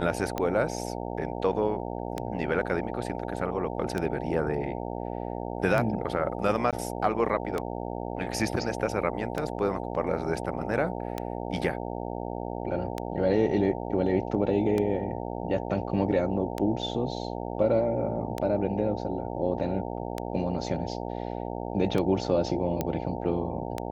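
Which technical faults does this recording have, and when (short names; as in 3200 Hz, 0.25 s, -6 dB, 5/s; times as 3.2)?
buzz 60 Hz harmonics 15 -34 dBFS
tick 33 1/3 rpm -15 dBFS
6.71–6.73 gap 17 ms
22.81 pop -13 dBFS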